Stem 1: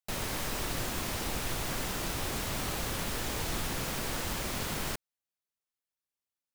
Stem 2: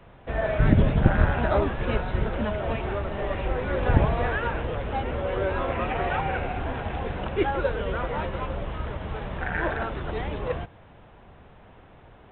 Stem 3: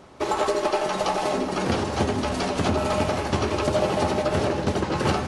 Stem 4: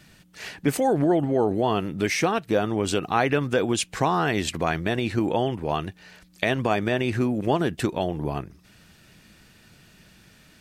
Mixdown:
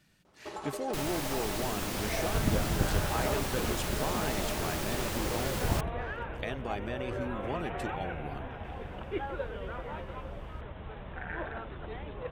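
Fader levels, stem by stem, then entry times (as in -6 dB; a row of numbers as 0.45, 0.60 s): -1.5, -10.5, -16.5, -14.0 dB; 0.85, 1.75, 0.25, 0.00 s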